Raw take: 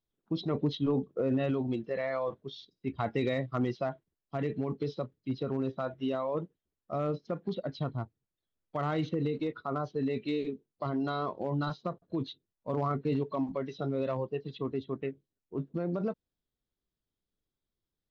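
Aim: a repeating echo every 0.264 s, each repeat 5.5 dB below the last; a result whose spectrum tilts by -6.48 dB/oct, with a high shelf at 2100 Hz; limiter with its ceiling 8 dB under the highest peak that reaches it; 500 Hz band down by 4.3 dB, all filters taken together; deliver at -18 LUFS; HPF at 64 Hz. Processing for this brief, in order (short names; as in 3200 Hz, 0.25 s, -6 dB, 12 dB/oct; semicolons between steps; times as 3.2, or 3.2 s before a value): HPF 64 Hz; bell 500 Hz -5 dB; high shelf 2100 Hz -4 dB; limiter -28 dBFS; feedback echo 0.264 s, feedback 53%, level -5.5 dB; gain +20 dB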